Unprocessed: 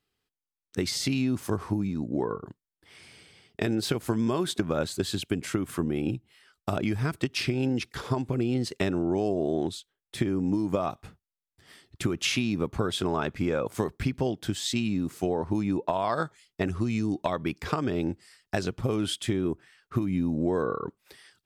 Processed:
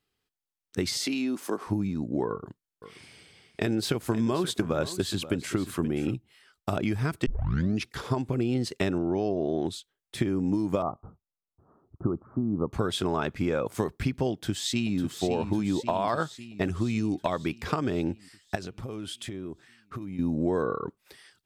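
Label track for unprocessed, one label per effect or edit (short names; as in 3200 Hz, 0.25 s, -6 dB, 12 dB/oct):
0.970000	1.670000	HPF 240 Hz 24 dB/oct
2.290000	6.140000	echo 0.529 s -14 dB
7.260000	7.260000	tape start 0.56 s
8.980000	9.650000	Chebyshev low-pass 6000 Hz, order 6
10.820000	12.730000	steep low-pass 1300 Hz 72 dB/oct
14.310000	14.980000	echo throw 0.55 s, feedback 65%, level -8.5 dB
18.550000	20.190000	compressor 3:1, threshold -36 dBFS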